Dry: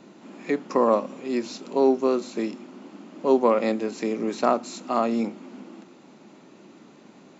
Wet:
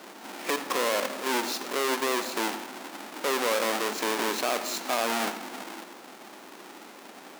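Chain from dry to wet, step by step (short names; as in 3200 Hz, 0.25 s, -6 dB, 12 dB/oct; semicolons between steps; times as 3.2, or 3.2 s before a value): half-waves squared off; HPF 500 Hz 12 dB/oct; limiter -17.5 dBFS, peak gain reduction 16 dB; on a send: reverb RT60 0.50 s, pre-delay 77 ms, DRR 12 dB; on the sum: gain +4 dB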